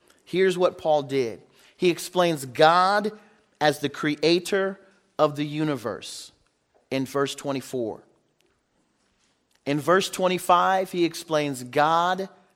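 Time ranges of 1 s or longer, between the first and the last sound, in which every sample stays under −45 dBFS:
0:08.41–0:09.55

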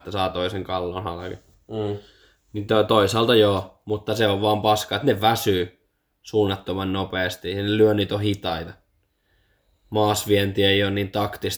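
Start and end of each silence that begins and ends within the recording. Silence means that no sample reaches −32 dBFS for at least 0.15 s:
0:01.35–0:01.71
0:01.98–0:02.55
0:03.66–0:03.88
0:05.67–0:06.28
0:08.71–0:09.92

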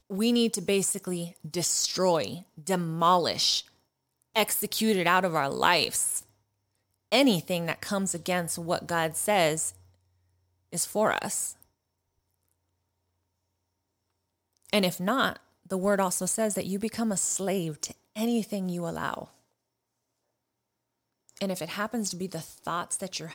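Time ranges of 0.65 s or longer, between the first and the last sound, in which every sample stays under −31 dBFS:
0:03.60–0:04.36
0:06.19–0:07.12
0:09.69–0:10.74
0:11.50–0:14.70
0:19.22–0:21.37

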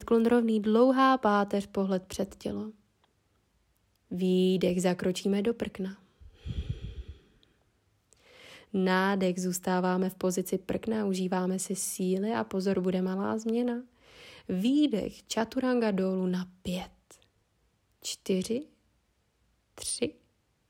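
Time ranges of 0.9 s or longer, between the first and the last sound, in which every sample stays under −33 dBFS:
0:02.66–0:04.12
0:07.00–0:08.74
0:16.83–0:18.05
0:18.61–0:19.82

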